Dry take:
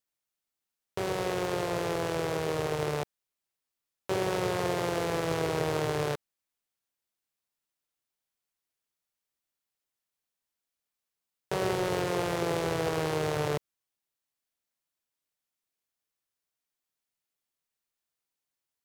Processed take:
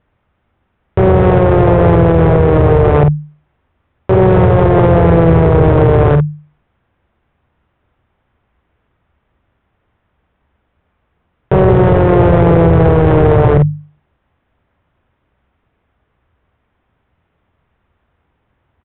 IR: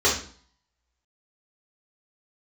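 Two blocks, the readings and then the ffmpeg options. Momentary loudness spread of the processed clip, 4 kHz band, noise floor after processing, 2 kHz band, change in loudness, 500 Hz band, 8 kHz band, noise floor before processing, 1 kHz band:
5 LU, n/a, -66 dBFS, +12.5 dB, +21.0 dB, +20.0 dB, under -35 dB, under -85 dBFS, +17.5 dB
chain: -filter_complex "[0:a]equalizer=f=72:t=o:w=1.6:g=12,bandreject=f=50:t=h:w=6,bandreject=f=100:t=h:w=6,bandreject=f=150:t=h:w=6,aresample=8000,asoftclip=type=tanh:threshold=-23dB,aresample=44100,lowpass=1.5k,asplit=2[a][b];[b]adelay=48,volume=-10dB[c];[a][c]amix=inputs=2:normalize=0,asplit=2[d][e];[e]acompressor=threshold=-42dB:ratio=6,volume=0dB[f];[d][f]amix=inputs=2:normalize=0,lowshelf=f=180:g=7,alimiter=level_in=25.5dB:limit=-1dB:release=50:level=0:latency=1,volume=-1dB"

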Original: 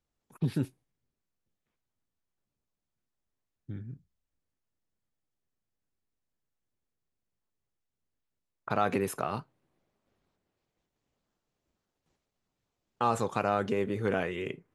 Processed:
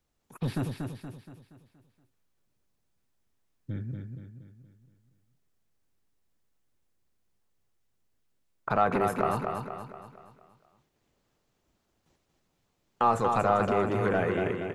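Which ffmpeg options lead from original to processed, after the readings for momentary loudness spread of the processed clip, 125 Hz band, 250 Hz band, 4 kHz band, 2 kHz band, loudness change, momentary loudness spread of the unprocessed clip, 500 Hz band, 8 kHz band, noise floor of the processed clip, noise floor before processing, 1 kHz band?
19 LU, +3.0 dB, +2.5 dB, 0.0 dB, +3.5 dB, +3.0 dB, 15 LU, +4.0 dB, -3.0 dB, -76 dBFS, under -85 dBFS, +5.5 dB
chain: -filter_complex "[0:a]acrossover=split=690|1600[a][b][c];[a]asoftclip=type=tanh:threshold=-32.5dB[d];[c]acompressor=threshold=-52dB:ratio=5[e];[d][b][e]amix=inputs=3:normalize=0,aecho=1:1:236|472|708|944|1180|1416:0.562|0.264|0.124|0.0584|0.0274|0.0129,volume=6.5dB"

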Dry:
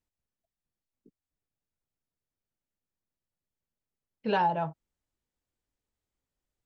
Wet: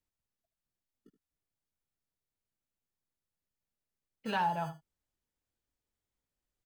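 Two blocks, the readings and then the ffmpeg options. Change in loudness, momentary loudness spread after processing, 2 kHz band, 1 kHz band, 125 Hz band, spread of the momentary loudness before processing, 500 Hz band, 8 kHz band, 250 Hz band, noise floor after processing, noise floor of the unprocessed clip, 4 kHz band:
-4.5 dB, 11 LU, -2.5 dB, -4.5 dB, -4.0 dB, 11 LU, -9.0 dB, n/a, -5.5 dB, under -85 dBFS, under -85 dBFS, -2.0 dB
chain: -filter_complex "[0:a]acrossover=split=220|710[a][b][c];[a]acrusher=samples=28:mix=1:aa=0.000001[d];[b]acompressor=threshold=-43dB:ratio=6[e];[d][e][c]amix=inputs=3:normalize=0,aecho=1:1:75:0.224,volume=-2.5dB"

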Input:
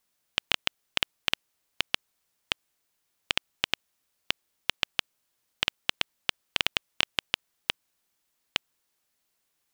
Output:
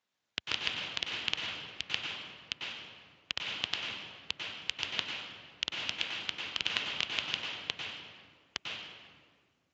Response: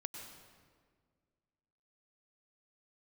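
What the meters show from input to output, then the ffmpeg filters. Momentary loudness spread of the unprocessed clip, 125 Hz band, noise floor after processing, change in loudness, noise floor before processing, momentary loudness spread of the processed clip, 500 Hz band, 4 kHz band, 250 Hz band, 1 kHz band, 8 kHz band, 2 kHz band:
5 LU, -3.0 dB, -77 dBFS, -4.5 dB, -77 dBFS, 11 LU, -5.0 dB, -3.5 dB, -3.5 dB, -4.5 dB, -5.5 dB, -4.0 dB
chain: -filter_complex "[1:a]atrim=start_sample=2205[a];[0:a][a]afir=irnorm=-1:irlink=0,volume=1.5dB" -ar 16000 -c:a libspeex -b:a 34k

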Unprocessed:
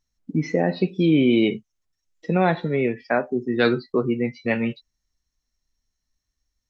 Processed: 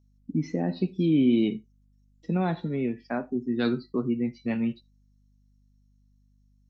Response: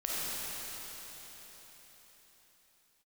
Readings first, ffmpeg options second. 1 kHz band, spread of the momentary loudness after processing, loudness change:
-9.5 dB, 10 LU, -5.0 dB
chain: -filter_complex "[0:a]equalizer=f=250:t=o:w=1:g=6,equalizer=f=500:t=o:w=1:g=-7,equalizer=f=2k:t=o:w=1:g=-8,aeval=exprs='val(0)+0.00178*(sin(2*PI*50*n/s)+sin(2*PI*2*50*n/s)/2+sin(2*PI*3*50*n/s)/3+sin(2*PI*4*50*n/s)/4+sin(2*PI*5*50*n/s)/5)':c=same,asplit=2[a][b];[1:a]atrim=start_sample=2205,atrim=end_sample=3969[c];[b][c]afir=irnorm=-1:irlink=0,volume=-19dB[d];[a][d]amix=inputs=2:normalize=0,volume=-7dB"

